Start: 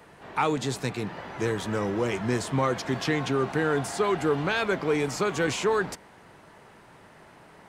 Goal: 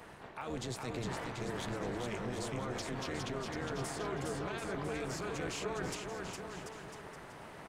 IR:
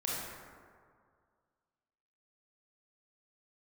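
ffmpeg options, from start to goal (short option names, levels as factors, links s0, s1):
-af "areverse,acompressor=threshold=0.0224:ratio=6,areverse,alimiter=level_in=2.37:limit=0.0631:level=0:latency=1:release=57,volume=0.422,tremolo=f=240:d=0.857,aecho=1:1:410|738|1000|1210|1378:0.631|0.398|0.251|0.158|0.1,volume=1.5"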